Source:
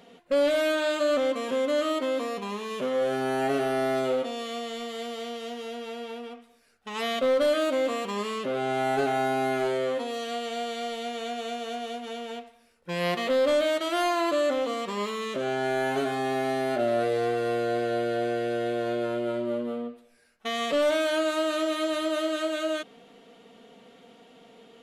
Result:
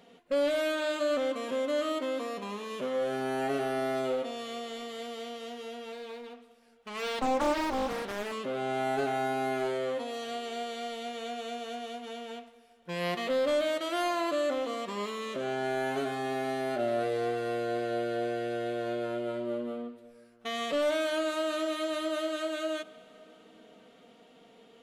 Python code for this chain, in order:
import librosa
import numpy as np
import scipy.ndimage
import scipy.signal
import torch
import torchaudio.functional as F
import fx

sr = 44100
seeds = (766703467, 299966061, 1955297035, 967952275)

y = fx.rev_plate(x, sr, seeds[0], rt60_s=4.6, hf_ratio=0.8, predelay_ms=0, drr_db=18.5)
y = fx.doppler_dist(y, sr, depth_ms=0.8, at=(5.92, 8.32))
y = y * 10.0 ** (-4.5 / 20.0)